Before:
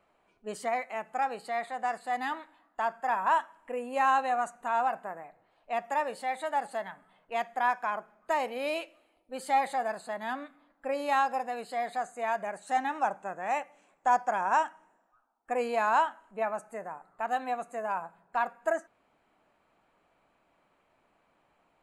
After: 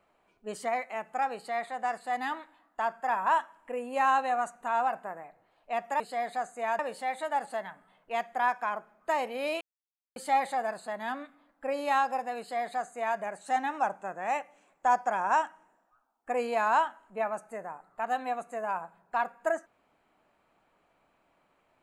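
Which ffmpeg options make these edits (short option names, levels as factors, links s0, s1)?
-filter_complex "[0:a]asplit=5[s0][s1][s2][s3][s4];[s0]atrim=end=6.002[s5];[s1]atrim=start=11.598:end=12.392[s6];[s2]atrim=start=5.998:end=8.82,asetpts=PTS-STARTPTS,afade=t=out:st=2.818:d=0.004:c=hsin[s7];[s3]atrim=start=8.82:end=9.37,asetpts=PTS-STARTPTS,volume=0[s8];[s4]atrim=start=9.37,asetpts=PTS-STARTPTS,afade=t=in:d=0.004:c=hsin[s9];[s5][s6]acrossfade=d=0.004:c1=hsin:c2=hsin[s10];[s7][s8][s9]concat=n=3:v=0:a=1[s11];[s10][s11]acrossfade=d=0.004:c1=hsin:c2=hsin"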